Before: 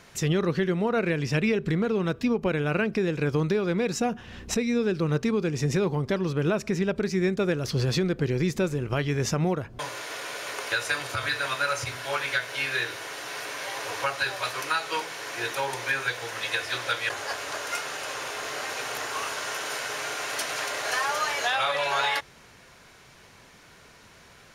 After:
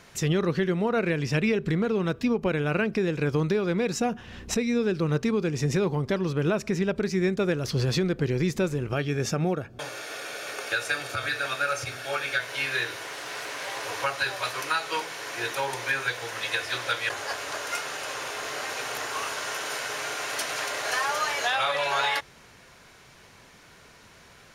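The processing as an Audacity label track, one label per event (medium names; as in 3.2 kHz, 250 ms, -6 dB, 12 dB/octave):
8.920000	12.400000	comb of notches 1 kHz
13.030000	13.830000	loudspeaker Doppler distortion depth 0.14 ms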